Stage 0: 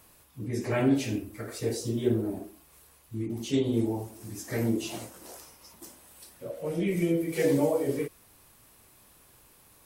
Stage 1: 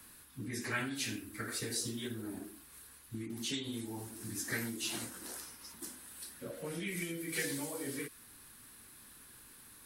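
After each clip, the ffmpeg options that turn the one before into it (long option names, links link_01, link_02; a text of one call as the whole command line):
ffmpeg -i in.wav -filter_complex "[0:a]acrossover=split=170|3000[link_01][link_02][link_03];[link_02]acompressor=threshold=-29dB:ratio=6[link_04];[link_01][link_04][link_03]amix=inputs=3:normalize=0,equalizer=frequency=250:width_type=o:width=0.67:gain=7,equalizer=frequency=630:width_type=o:width=0.67:gain=-7,equalizer=frequency=1600:width_type=o:width=0.67:gain=9,equalizer=frequency=4000:width_type=o:width=0.67:gain=6,equalizer=frequency=10000:width_type=o:width=0.67:gain=8,acrossover=split=760|5100[link_05][link_06][link_07];[link_05]acompressor=threshold=-37dB:ratio=6[link_08];[link_08][link_06][link_07]amix=inputs=3:normalize=0,volume=-3dB" out.wav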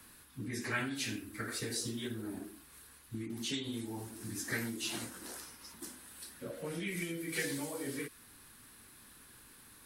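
ffmpeg -i in.wav -af "highshelf=frequency=7200:gain=-4.5,volume=1dB" out.wav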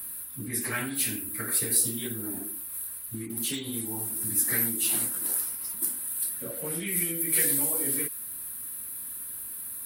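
ffmpeg -i in.wav -filter_complex "[0:a]asplit=2[link_01][link_02];[link_02]volume=30.5dB,asoftclip=hard,volume=-30.5dB,volume=-5dB[link_03];[link_01][link_03]amix=inputs=2:normalize=0,aexciter=amount=11.3:drive=4.4:freq=9100" out.wav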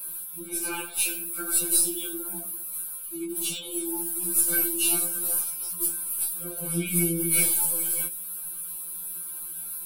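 ffmpeg -i in.wav -af "aeval=exprs='0.355*(cos(1*acos(clip(val(0)/0.355,-1,1)))-cos(1*PI/2))+0.00794*(cos(6*acos(clip(val(0)/0.355,-1,1)))-cos(6*PI/2))':channel_layout=same,asuperstop=centerf=1900:order=12:qfactor=3.6,afftfilt=real='re*2.83*eq(mod(b,8),0)':imag='im*2.83*eq(mod(b,8),0)':win_size=2048:overlap=0.75,volume=4.5dB" out.wav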